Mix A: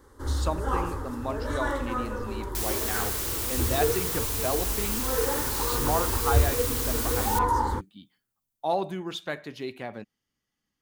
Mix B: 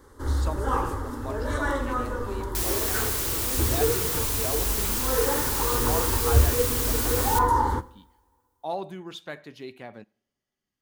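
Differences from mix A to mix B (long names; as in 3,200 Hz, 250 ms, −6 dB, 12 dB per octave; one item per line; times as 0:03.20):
speech −5.5 dB
reverb: on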